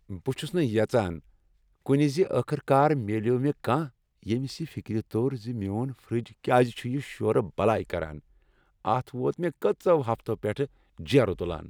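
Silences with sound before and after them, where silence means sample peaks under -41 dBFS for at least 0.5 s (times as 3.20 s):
1.20–1.86 s
8.19–8.85 s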